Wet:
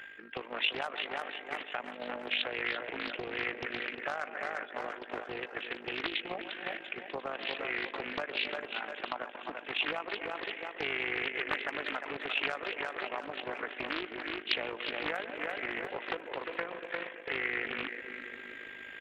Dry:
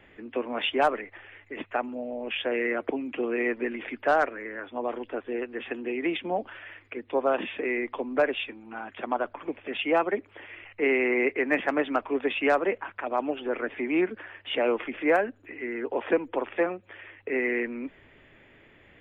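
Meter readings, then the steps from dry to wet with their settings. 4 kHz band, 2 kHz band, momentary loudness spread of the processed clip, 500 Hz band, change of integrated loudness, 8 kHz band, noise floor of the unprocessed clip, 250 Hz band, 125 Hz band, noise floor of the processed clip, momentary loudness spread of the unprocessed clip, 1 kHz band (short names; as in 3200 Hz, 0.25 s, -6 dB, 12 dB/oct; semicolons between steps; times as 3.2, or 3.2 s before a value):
+2.0 dB, -3.5 dB, 8 LU, -12.5 dB, -7.5 dB, n/a, -57 dBFS, -14.0 dB, -4.0 dB, -48 dBFS, 14 LU, -8.5 dB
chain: whine 1600 Hz -50 dBFS; darkening echo 0.134 s, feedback 74%, low-pass 1200 Hz, level -13 dB; reverse; upward compressor, threshold -31 dBFS; reverse; low shelf 140 Hz -11 dB; on a send: feedback echo 0.346 s, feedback 51%, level -8 dB; on the sum: gate -33 dBFS, range -7 dB; compressor 6:1, threshold -34 dBFS, peak gain reduction 15 dB; AM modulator 51 Hz, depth 50%; tilt shelf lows -7.5 dB, about 1300 Hz; Doppler distortion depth 0.58 ms; gain +5.5 dB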